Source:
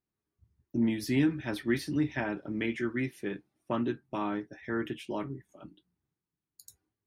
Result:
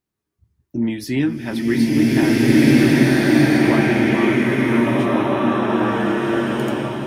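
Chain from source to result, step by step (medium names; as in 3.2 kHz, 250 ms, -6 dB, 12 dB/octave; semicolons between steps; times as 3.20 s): swelling reverb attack 1690 ms, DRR -10 dB; trim +6.5 dB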